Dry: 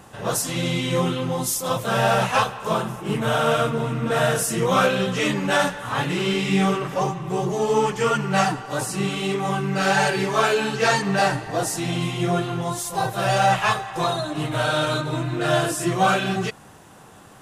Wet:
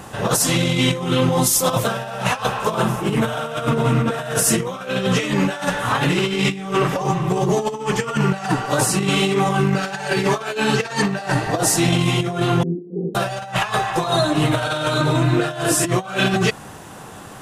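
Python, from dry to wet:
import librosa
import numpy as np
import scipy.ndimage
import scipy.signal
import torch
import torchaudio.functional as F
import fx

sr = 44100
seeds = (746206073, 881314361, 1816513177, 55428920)

y = fx.cheby1_bandpass(x, sr, low_hz=170.0, high_hz=440.0, order=4, at=(12.63, 13.15))
y = fx.over_compress(y, sr, threshold_db=-25.0, ratio=-0.5)
y = y * 10.0 ** (6.0 / 20.0)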